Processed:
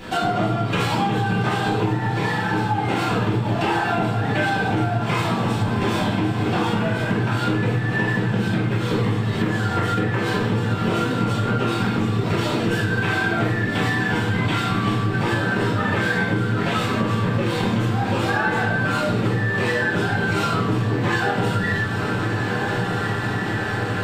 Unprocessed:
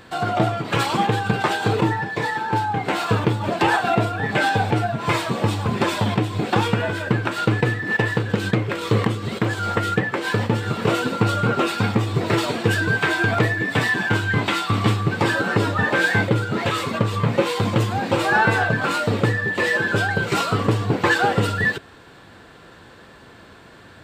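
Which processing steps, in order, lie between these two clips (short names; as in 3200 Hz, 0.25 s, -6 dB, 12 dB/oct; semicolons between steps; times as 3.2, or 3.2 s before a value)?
diffused feedback echo 1.465 s, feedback 57%, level -11.5 dB; reverb RT60 0.70 s, pre-delay 3 ms, DRR -10 dB; compressor 5:1, threshold -20 dBFS, peak gain reduction 17 dB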